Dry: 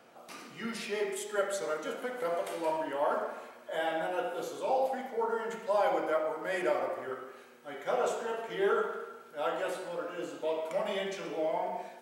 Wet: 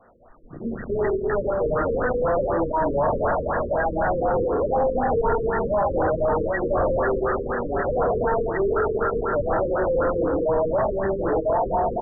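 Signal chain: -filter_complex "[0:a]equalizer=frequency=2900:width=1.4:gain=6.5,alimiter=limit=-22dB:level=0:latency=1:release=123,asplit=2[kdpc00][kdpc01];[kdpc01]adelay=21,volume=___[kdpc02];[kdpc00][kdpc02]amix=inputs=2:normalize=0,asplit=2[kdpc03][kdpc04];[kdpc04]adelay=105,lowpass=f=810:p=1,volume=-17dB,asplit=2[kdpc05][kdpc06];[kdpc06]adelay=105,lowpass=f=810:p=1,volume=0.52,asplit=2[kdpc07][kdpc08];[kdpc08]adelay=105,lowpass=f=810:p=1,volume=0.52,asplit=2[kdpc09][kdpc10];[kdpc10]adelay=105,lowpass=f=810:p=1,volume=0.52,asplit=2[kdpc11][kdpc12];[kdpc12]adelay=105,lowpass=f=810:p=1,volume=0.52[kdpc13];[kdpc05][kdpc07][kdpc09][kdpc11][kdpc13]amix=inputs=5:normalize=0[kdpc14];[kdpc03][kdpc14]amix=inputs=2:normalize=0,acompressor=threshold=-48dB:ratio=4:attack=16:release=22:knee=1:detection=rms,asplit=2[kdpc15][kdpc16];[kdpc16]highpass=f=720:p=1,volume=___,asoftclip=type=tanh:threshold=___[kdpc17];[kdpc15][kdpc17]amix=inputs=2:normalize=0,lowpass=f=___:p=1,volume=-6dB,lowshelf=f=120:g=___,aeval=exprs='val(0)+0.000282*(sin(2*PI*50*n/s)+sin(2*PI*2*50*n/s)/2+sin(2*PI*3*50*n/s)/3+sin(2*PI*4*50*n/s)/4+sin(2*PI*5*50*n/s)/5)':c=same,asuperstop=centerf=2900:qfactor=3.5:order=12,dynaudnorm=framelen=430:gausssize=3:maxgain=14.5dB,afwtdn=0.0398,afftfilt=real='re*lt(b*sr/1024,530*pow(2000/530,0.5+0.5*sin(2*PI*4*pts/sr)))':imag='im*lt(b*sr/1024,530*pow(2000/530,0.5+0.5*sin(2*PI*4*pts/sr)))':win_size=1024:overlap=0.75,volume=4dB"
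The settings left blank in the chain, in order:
-10dB, 35dB, -33dB, 1900, 11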